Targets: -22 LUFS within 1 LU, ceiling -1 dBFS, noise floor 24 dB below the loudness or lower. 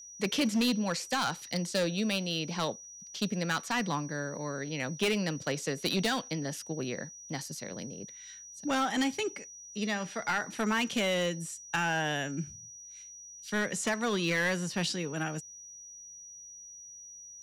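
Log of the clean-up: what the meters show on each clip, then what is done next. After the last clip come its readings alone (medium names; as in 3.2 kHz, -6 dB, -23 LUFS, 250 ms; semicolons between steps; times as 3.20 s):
clipped samples 1.5%; clipping level -23.5 dBFS; steady tone 5.8 kHz; tone level -46 dBFS; loudness -32.0 LUFS; peak level -23.5 dBFS; loudness target -22.0 LUFS
-> clip repair -23.5 dBFS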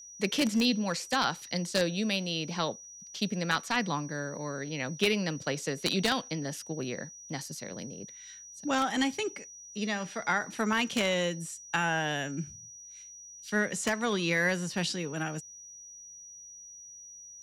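clipped samples 0.0%; steady tone 5.8 kHz; tone level -46 dBFS
-> band-stop 5.8 kHz, Q 30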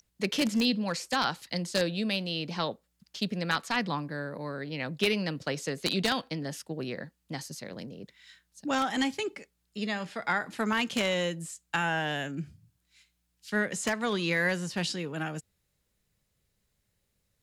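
steady tone not found; loudness -31.0 LUFS; peak level -14.0 dBFS; loudness target -22.0 LUFS
-> trim +9 dB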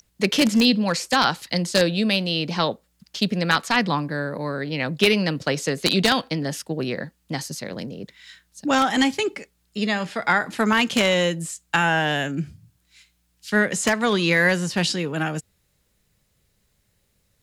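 loudness -22.0 LUFS; peak level -5.0 dBFS; noise floor -68 dBFS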